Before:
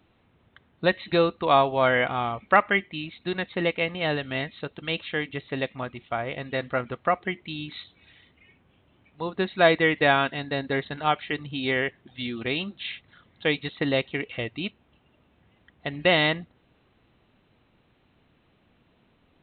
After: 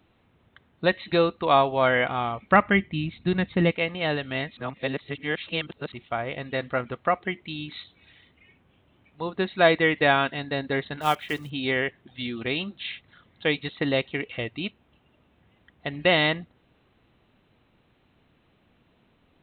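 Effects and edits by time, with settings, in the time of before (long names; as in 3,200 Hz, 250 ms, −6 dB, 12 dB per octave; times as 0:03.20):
0:02.51–0:03.72: bass and treble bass +13 dB, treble −4 dB
0:04.57–0:05.92: reverse
0:11.01–0:11.51: one scale factor per block 5 bits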